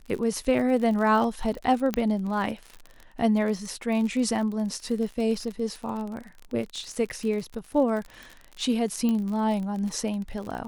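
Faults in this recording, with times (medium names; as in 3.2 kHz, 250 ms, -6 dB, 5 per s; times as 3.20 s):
crackle 50 per s -32 dBFS
1.94 s: pop -11 dBFS
9.09 s: pop -16 dBFS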